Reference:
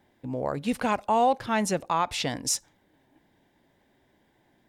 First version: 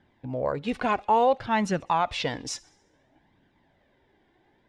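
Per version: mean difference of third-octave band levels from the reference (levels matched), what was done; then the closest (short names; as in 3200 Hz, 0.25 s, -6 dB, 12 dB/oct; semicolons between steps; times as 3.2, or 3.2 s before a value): 3.5 dB: LPF 4100 Hz 12 dB/oct; thin delay 68 ms, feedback 58%, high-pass 2300 Hz, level -23.5 dB; flange 0.58 Hz, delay 0.6 ms, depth 2.3 ms, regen +41%; gain +5 dB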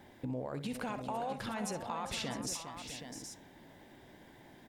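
8.0 dB: limiter -25 dBFS, peak gain reduction 11 dB; compressor 3:1, threshold -49 dBFS, peak gain reduction 14.5 dB; on a send: tapped delay 62/405/655/771 ms -12/-11/-11/-9 dB; on the sum: gain +8 dB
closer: first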